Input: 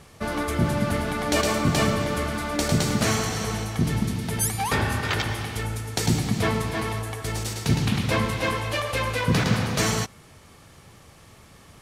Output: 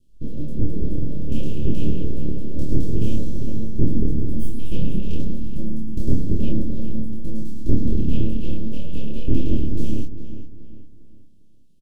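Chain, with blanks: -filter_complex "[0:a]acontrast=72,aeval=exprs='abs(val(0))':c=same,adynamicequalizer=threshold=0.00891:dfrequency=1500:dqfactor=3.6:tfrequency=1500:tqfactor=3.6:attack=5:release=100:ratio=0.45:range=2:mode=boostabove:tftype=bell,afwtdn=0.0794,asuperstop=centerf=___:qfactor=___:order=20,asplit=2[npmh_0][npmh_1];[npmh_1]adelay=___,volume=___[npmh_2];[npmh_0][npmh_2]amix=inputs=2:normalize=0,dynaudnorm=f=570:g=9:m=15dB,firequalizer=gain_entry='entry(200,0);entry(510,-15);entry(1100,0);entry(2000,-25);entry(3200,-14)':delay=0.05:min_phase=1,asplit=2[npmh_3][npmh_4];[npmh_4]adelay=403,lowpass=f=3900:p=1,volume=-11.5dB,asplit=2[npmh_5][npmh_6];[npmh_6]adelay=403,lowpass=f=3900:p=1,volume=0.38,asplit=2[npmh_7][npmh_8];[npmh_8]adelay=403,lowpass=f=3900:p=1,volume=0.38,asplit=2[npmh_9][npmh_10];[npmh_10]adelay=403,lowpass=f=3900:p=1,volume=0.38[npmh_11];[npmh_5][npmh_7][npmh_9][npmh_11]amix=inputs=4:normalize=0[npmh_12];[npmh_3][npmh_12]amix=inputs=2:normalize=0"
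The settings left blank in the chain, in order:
1200, 0.63, 27, -2.5dB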